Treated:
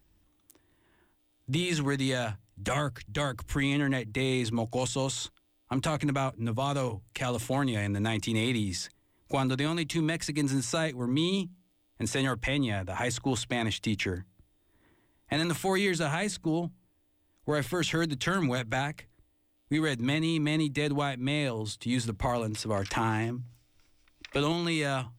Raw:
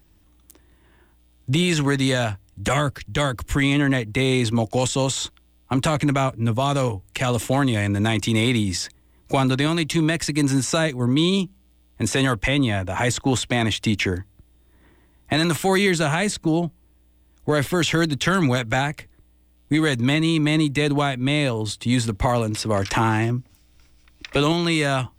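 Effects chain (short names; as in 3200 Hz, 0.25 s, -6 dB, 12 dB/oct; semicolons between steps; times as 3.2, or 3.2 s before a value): notches 60/120/180 Hz; gain -8.5 dB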